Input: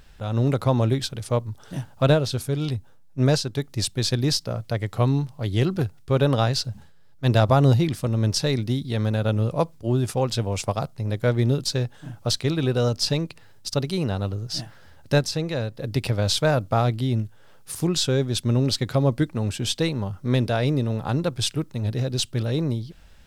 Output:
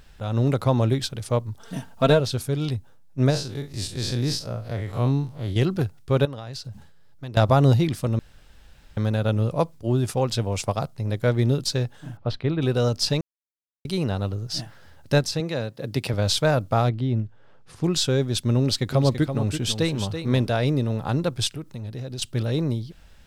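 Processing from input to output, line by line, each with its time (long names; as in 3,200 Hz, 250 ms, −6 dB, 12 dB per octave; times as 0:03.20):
0:01.59–0:02.20: comb filter 4.4 ms
0:03.30–0:05.56: spectrum smeared in time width 90 ms
0:06.25–0:07.37: downward compressor 10 to 1, threshold −31 dBFS
0:08.19–0:08.97: fill with room tone
0:12.17–0:12.62: high-frequency loss of the air 370 metres
0:13.21–0:13.85: silence
0:15.40–0:16.14: high-pass filter 120 Hz
0:16.89–0:17.84: head-to-tape spacing loss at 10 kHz 22 dB
0:18.59–0:20.54: single-tap delay 333 ms −8.5 dB
0:21.47–0:22.22: downward compressor 3 to 1, threshold −32 dBFS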